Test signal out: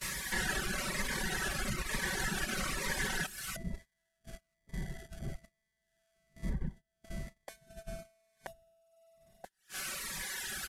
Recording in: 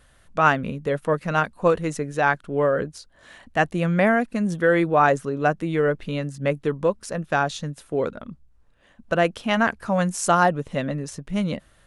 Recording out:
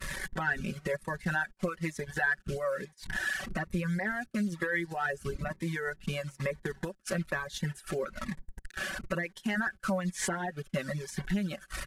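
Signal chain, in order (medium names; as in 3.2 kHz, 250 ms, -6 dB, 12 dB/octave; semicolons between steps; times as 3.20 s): one-bit delta coder 64 kbps, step -33 dBFS; wind noise 120 Hz -38 dBFS; peak limiter -14.5 dBFS; transient shaper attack -3 dB, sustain -7 dB; compression 16:1, threshold -30 dBFS; comb 5.3 ms, depth 73%; Chebyshev shaper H 2 -28 dB, 3 -42 dB, 4 -27 dB, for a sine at -15.5 dBFS; gate -41 dBFS, range -23 dB; reverb removal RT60 1.1 s; peaking EQ 1.7 kHz +13 dB 0.71 oct; Shepard-style phaser falling 1.1 Hz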